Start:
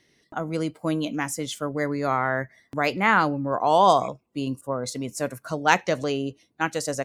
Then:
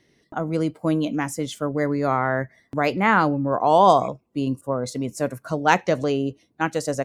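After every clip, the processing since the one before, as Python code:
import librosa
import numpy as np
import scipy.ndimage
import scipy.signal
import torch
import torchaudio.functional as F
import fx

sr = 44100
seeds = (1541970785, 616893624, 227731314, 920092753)

y = fx.tilt_shelf(x, sr, db=3.5, hz=1200.0)
y = y * 10.0 ** (1.0 / 20.0)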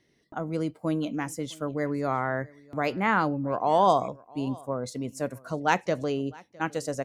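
y = x + 10.0 ** (-24.0 / 20.0) * np.pad(x, (int(659 * sr / 1000.0), 0))[:len(x)]
y = y * 10.0 ** (-6.0 / 20.0)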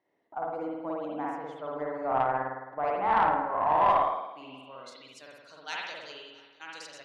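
y = fx.rev_spring(x, sr, rt60_s=1.1, pass_ms=(53,), chirp_ms=40, drr_db=-4.0)
y = fx.filter_sweep_bandpass(y, sr, from_hz=820.0, to_hz=4000.0, start_s=3.41, end_s=5.3, q=2.4)
y = fx.tube_stage(y, sr, drive_db=15.0, bias=0.3)
y = y * 10.0 ** (1.5 / 20.0)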